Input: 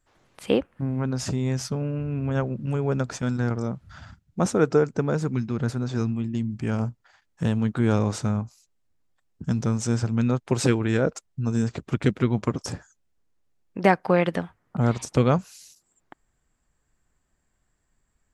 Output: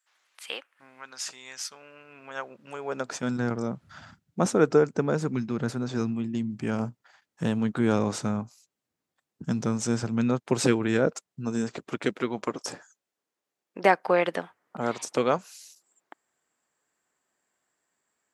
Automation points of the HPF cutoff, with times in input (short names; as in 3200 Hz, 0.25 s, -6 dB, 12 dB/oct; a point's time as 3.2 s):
1.73 s 1500 Hz
2.84 s 650 Hz
3.34 s 170 Hz
11.07 s 170 Hz
12.16 s 370 Hz